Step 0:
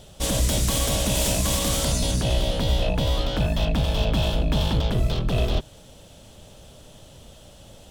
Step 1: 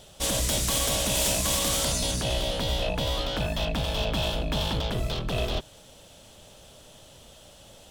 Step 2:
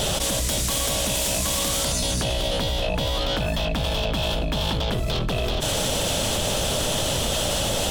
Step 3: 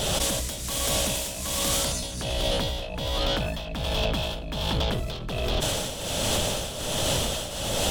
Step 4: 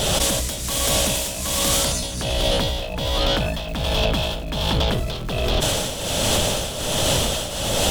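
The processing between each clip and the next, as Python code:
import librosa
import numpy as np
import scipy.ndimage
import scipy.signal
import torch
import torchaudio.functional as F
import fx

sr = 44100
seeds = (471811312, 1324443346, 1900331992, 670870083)

y1 = fx.low_shelf(x, sr, hz=380.0, db=-8.0)
y2 = fx.env_flatten(y1, sr, amount_pct=100)
y3 = fx.tremolo_shape(y2, sr, shape='triangle', hz=1.3, depth_pct=75)
y4 = fx.dmg_crackle(y3, sr, seeds[0], per_s=350.0, level_db=-37.0)
y4 = F.gain(torch.from_numpy(y4), 5.5).numpy()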